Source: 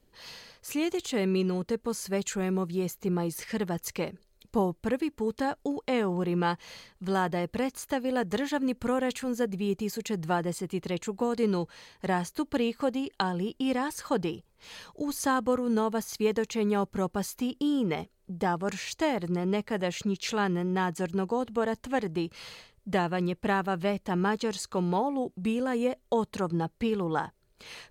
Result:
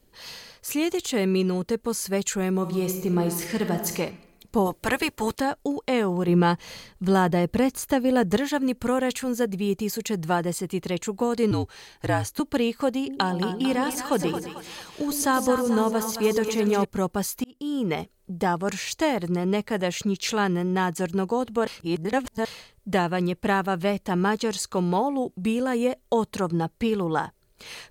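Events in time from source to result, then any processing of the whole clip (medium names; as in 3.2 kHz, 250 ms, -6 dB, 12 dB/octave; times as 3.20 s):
2.58–3.98 s: reverb throw, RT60 1 s, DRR 4 dB
4.65–5.39 s: spectral peaks clipped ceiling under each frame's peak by 18 dB
6.28–8.37 s: bass shelf 430 Hz +6.5 dB
11.51–12.40 s: frequency shift -69 Hz
12.97–16.85 s: two-band feedback delay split 670 Hz, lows 108 ms, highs 223 ms, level -7.5 dB
17.44–17.94 s: fade in
21.67–22.45 s: reverse
whole clip: treble shelf 7.5 kHz +6.5 dB; trim +4 dB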